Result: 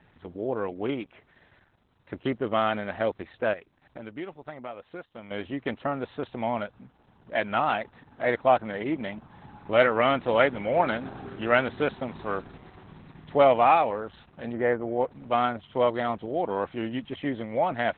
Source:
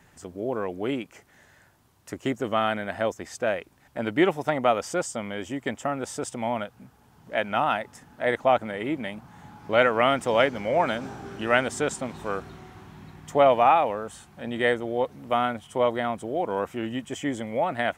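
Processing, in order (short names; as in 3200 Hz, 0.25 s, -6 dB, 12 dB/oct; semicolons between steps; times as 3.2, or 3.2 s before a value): 3.53–5.31 compressor 2.5:1, threshold -42 dBFS, peak gain reduction 17 dB; 14.51–15.09 LPF 1600 Hz -> 2600 Hz 24 dB/oct; Opus 8 kbps 48000 Hz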